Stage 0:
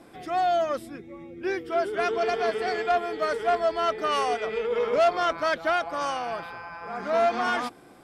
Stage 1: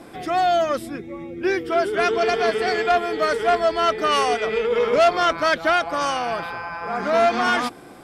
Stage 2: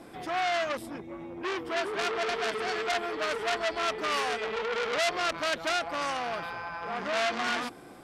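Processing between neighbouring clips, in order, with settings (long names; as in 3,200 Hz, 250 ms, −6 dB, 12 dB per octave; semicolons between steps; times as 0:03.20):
dynamic equaliser 730 Hz, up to −4 dB, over −31 dBFS, Q 0.7; level +8.5 dB
saturating transformer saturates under 3,700 Hz; level −5.5 dB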